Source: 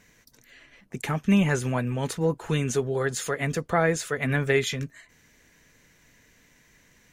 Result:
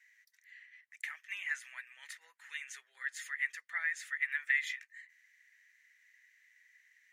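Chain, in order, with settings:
four-pole ladder high-pass 1,800 Hz, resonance 80%
level −3.5 dB

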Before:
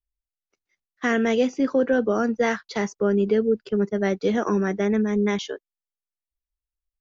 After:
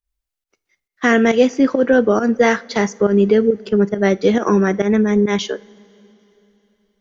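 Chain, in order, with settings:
fake sidechain pumping 137 BPM, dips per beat 1, −14 dB, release 120 ms
coupled-rooms reverb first 0.31 s, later 3.6 s, from −19 dB, DRR 16 dB
level +8 dB

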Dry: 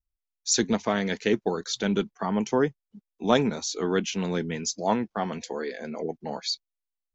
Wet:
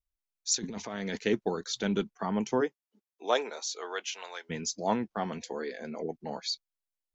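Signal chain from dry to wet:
0:00.55–0:01.19: compressor whose output falls as the input rises −32 dBFS, ratio −1
0:02.60–0:04.49: high-pass filter 280 Hz → 750 Hz 24 dB per octave
level −4 dB

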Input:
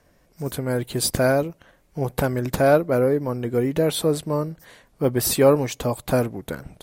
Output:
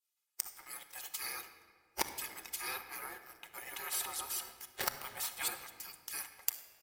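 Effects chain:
0:03.41–0:05.48: delay that plays each chunk backwards 249 ms, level −1.5 dB
gate on every frequency bin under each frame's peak −25 dB weak
high-pass filter 190 Hz 6 dB per octave
downward expander −49 dBFS
high-shelf EQ 6,200 Hz +7.5 dB
comb filter 2.4 ms, depth 53%
leveller curve on the samples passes 3
gate with flip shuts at −29 dBFS, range −37 dB
convolution reverb RT60 1.8 s, pre-delay 6 ms, DRR 6.5 dB
level +18 dB

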